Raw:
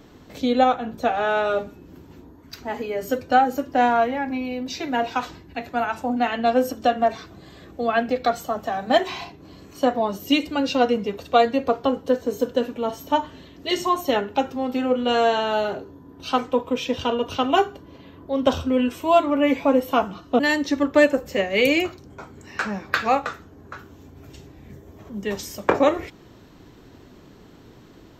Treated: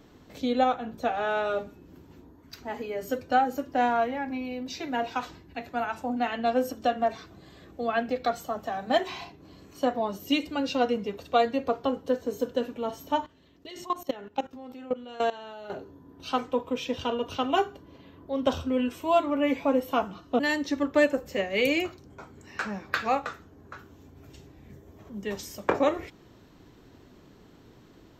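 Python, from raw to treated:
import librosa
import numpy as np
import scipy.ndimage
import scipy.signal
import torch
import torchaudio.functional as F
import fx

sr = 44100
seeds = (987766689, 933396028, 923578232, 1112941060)

y = fx.level_steps(x, sr, step_db=18, at=(13.26, 15.7))
y = y * 10.0 ** (-6.0 / 20.0)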